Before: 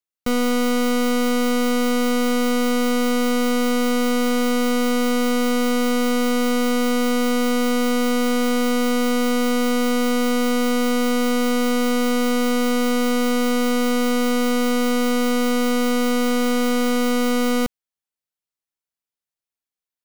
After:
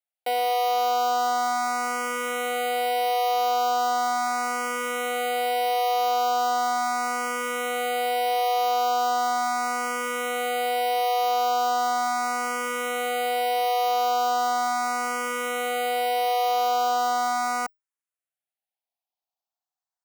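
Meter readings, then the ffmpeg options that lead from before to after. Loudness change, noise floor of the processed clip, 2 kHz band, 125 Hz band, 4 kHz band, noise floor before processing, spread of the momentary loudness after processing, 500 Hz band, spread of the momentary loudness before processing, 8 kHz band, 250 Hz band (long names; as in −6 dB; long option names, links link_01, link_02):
−4.5 dB, below −85 dBFS, −3.5 dB, can't be measured, −4.5 dB, below −85 dBFS, 4 LU, −6.5 dB, 0 LU, −5.0 dB, −23.5 dB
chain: -filter_complex "[0:a]highpass=frequency=740:width_type=q:width=5.2,asplit=2[link_01][link_02];[link_02]afreqshift=0.38[link_03];[link_01][link_03]amix=inputs=2:normalize=1,volume=-2dB"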